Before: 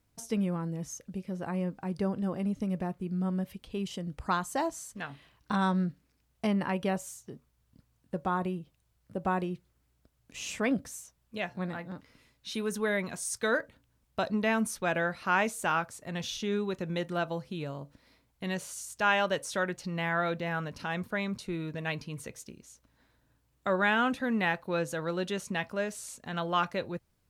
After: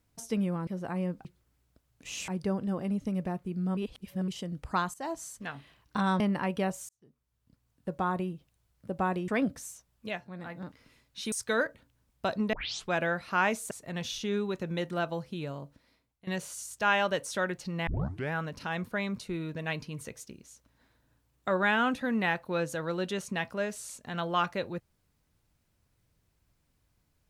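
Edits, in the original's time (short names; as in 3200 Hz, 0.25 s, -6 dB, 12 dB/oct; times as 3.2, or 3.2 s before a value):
0.67–1.25 cut
3.32–3.83 reverse
4.49–4.78 fade in, from -15.5 dB
5.75–6.46 cut
7.15–8.25 fade in
9.54–10.57 move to 1.83
11.36–11.87 dip -9.5 dB, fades 0.24 s
12.61–13.26 cut
14.47 tape start 0.37 s
15.65–15.9 cut
17.74–18.46 fade out, to -19 dB
20.06 tape start 0.46 s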